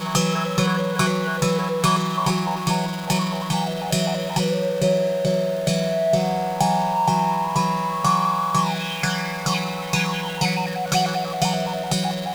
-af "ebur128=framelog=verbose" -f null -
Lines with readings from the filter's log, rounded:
Integrated loudness:
  I:         -21.9 LUFS
  Threshold: -31.9 LUFS
Loudness range:
  LRA:         1.8 LU
  Threshold: -41.8 LUFS
  LRA low:   -22.8 LUFS
  LRA high:  -21.0 LUFS